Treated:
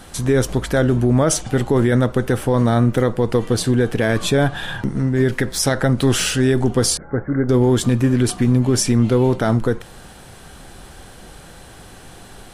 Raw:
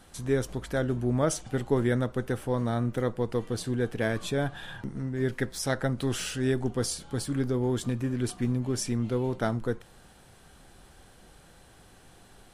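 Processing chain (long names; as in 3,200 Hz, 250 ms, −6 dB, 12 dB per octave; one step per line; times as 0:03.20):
0:06.97–0:07.49: Chebyshev low-pass with heavy ripple 2,100 Hz, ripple 6 dB
boost into a limiter +20.5 dB
level −6.5 dB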